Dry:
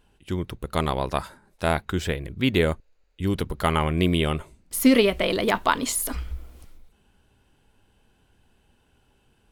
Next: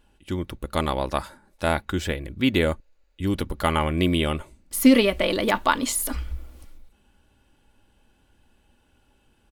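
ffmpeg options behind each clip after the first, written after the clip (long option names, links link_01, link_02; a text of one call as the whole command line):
ffmpeg -i in.wav -af "aecho=1:1:3.5:0.34" out.wav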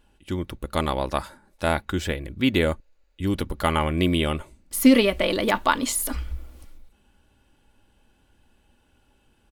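ffmpeg -i in.wav -af anull out.wav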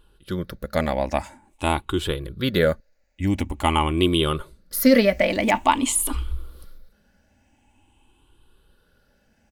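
ffmpeg -i in.wav -af "afftfilt=real='re*pow(10,12/40*sin(2*PI*(0.63*log(max(b,1)*sr/1024/100)/log(2)-(0.47)*(pts-256)/sr)))':imag='im*pow(10,12/40*sin(2*PI*(0.63*log(max(b,1)*sr/1024/100)/log(2)-(0.47)*(pts-256)/sr)))':win_size=1024:overlap=0.75" out.wav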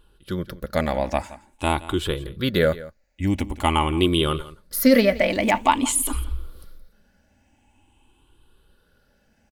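ffmpeg -i in.wav -af "aecho=1:1:171:0.126" out.wav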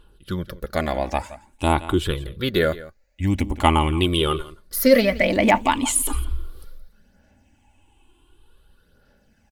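ffmpeg -i in.wav -af "aphaser=in_gain=1:out_gain=1:delay=2.9:decay=0.4:speed=0.55:type=sinusoidal" out.wav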